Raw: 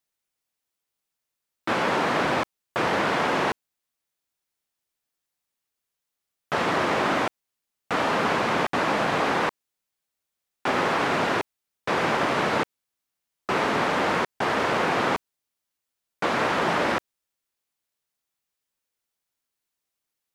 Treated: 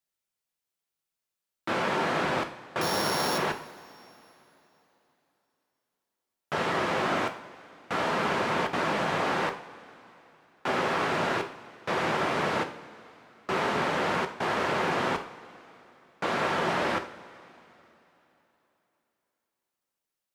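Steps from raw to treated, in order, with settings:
0:02.81–0:03.38: samples sorted by size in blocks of 8 samples
coupled-rooms reverb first 0.45 s, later 3.4 s, from −18 dB, DRR 5.5 dB
level −5 dB

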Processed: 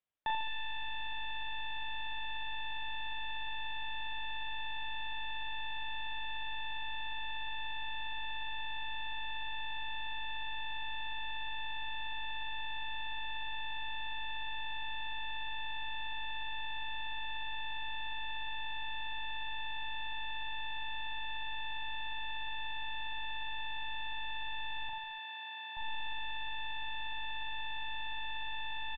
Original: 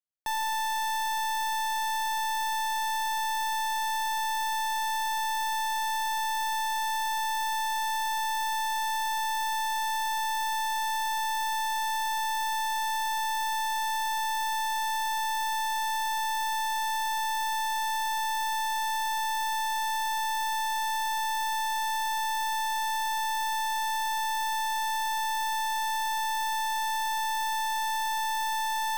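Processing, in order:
0:24.89–0:25.77: high-pass filter 270 Hz 12 dB per octave
reverb reduction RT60 1.5 s
brickwall limiter −36 dBFS, peak gain reduction 7.5 dB
on a send: reverse bouncing-ball delay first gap 40 ms, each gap 1.2×, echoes 5
on the sum: downsampling to 8,000 Hz
level +4.5 dB

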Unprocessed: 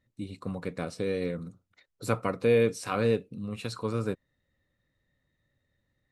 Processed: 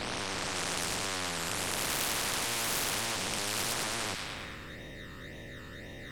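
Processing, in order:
peak hold with a rise ahead of every peak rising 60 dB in 2.83 s
low-pass filter 3,800 Hz 6 dB per octave
low-shelf EQ 430 Hz +8.5 dB
reversed playback
upward compression, threshold −41 dBFS
reversed playback
tube saturation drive 23 dB, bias 0.75
all-pass phaser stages 12, 1.9 Hz, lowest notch 620–1,500 Hz
sine wavefolder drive 13 dB, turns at −20 dBFS
on a send: delay with a high-pass on its return 107 ms, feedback 56%, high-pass 2,100 Hz, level −6 dB
on the sum: every bin compressed towards the loudest bin 4 to 1

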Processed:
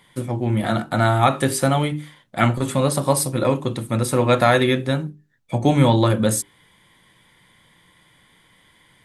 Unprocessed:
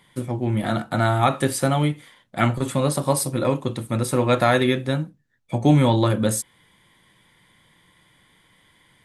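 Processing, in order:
mains-hum notches 50/100/150/200/250/300/350/400 Hz
level +2.5 dB

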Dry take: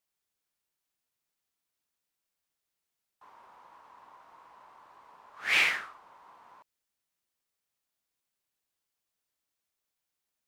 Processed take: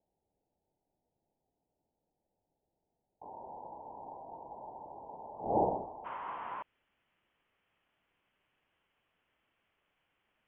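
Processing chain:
Butterworth low-pass 890 Hz 96 dB per octave, from 0:06.04 3,200 Hz
level +14.5 dB

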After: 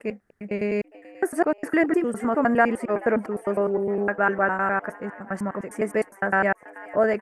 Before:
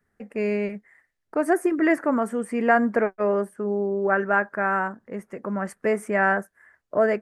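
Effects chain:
slices reordered back to front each 102 ms, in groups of 4
echo with shifted repeats 432 ms, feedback 58%, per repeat +100 Hz, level −20.5 dB

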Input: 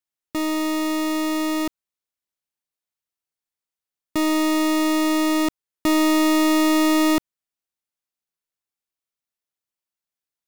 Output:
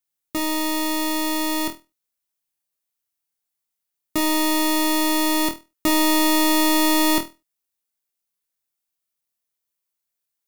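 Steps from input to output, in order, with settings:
high-shelf EQ 7,500 Hz +9.5 dB
on a send: flutter between parallel walls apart 4.2 metres, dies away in 0.25 s

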